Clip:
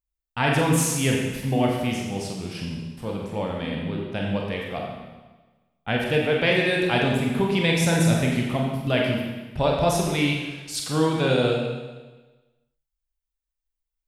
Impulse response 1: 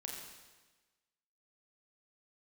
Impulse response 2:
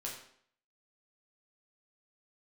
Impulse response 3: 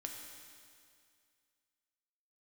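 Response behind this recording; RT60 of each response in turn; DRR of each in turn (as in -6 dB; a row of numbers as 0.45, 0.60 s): 1; 1.3, 0.60, 2.2 s; -1.5, -3.5, 1.0 dB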